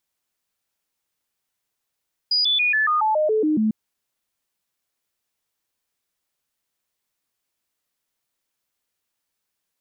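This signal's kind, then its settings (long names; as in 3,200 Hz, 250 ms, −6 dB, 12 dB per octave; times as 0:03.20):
stepped sweep 4,910 Hz down, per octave 2, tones 10, 0.14 s, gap 0.00 s −16.5 dBFS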